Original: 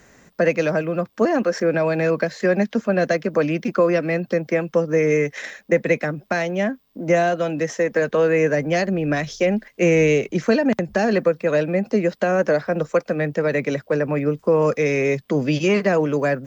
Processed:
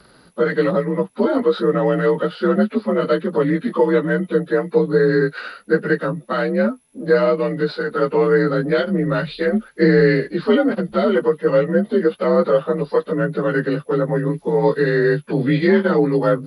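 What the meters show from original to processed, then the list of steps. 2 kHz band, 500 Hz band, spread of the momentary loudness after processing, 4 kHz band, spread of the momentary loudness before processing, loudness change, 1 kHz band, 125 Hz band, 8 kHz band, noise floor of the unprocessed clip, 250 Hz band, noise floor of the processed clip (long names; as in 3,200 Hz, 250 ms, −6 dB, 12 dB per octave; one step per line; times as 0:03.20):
+0.5 dB, +2.0 dB, 6 LU, +1.5 dB, 5 LU, +2.0 dB, +1.5 dB, +2.5 dB, can't be measured, −56 dBFS, +3.0 dB, −50 dBFS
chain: partials spread apart or drawn together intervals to 88%
flanger 1.2 Hz, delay 4.8 ms, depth 3.6 ms, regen −39%
level +7.5 dB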